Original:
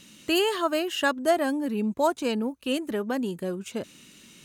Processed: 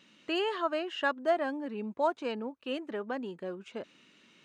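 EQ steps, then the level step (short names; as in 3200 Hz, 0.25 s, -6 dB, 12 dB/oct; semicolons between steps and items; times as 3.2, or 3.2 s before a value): HPF 800 Hz 6 dB/oct; tape spacing loss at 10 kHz 30 dB; +1.0 dB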